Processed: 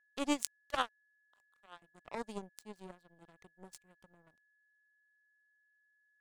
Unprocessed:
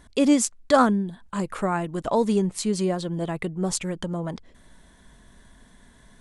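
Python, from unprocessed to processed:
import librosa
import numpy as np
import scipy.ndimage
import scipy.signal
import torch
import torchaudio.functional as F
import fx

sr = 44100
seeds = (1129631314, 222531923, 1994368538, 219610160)

y = fx.steep_highpass(x, sr, hz=630.0, slope=36, at=(0.61, 1.82))
y = fx.power_curve(y, sr, exponent=3.0)
y = y + 10.0 ** (-72.0 / 20.0) * np.sin(2.0 * np.pi * 1700.0 * np.arange(len(y)) / sr)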